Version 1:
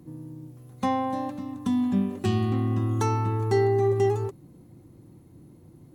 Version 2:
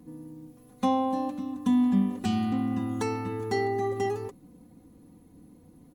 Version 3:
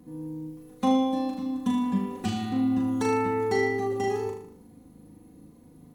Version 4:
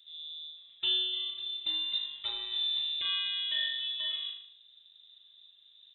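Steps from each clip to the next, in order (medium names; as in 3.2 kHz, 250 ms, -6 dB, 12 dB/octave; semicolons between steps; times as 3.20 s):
comb 4.1 ms, depth 78%; trim -3 dB
flutter echo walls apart 6.6 m, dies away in 0.62 s
frequency inversion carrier 3.8 kHz; trim -7.5 dB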